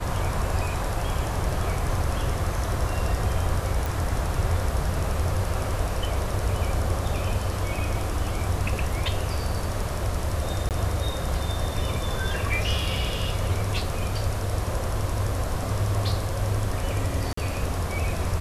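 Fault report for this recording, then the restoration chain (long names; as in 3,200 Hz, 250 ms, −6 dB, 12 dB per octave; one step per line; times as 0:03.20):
0:03.86: click
0:10.69–0:10.71: drop-out 18 ms
0:17.33–0:17.37: drop-out 44 ms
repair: click removal
repair the gap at 0:10.69, 18 ms
repair the gap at 0:17.33, 44 ms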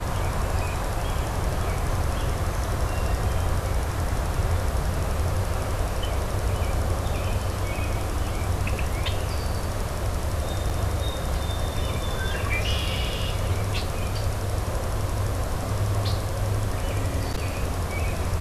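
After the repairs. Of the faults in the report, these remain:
none of them is left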